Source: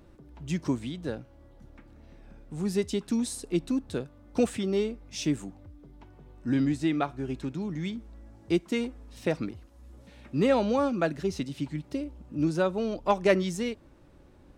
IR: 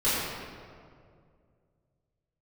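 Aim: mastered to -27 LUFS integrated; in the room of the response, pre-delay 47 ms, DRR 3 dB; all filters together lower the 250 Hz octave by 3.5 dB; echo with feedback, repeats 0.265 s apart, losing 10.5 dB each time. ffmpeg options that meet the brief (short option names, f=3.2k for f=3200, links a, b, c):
-filter_complex "[0:a]equalizer=f=250:t=o:g=-4.5,aecho=1:1:265|530|795:0.299|0.0896|0.0269,asplit=2[a][b];[1:a]atrim=start_sample=2205,adelay=47[c];[b][c]afir=irnorm=-1:irlink=0,volume=-17dB[d];[a][d]amix=inputs=2:normalize=0,volume=2.5dB"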